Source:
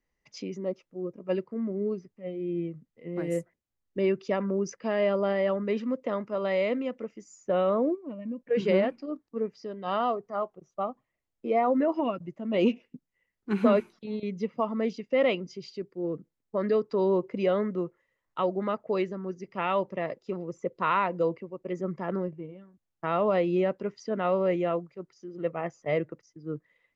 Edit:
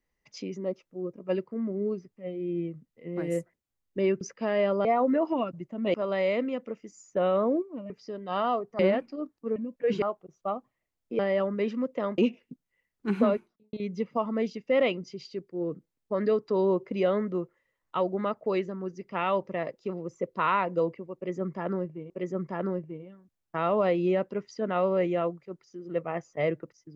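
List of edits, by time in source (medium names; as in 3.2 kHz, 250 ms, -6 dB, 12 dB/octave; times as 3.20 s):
4.21–4.64 s: delete
5.28–6.27 s: swap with 11.52–12.61 s
8.23–8.69 s: swap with 9.46–10.35 s
13.51–14.16 s: studio fade out
21.59–22.53 s: loop, 2 plays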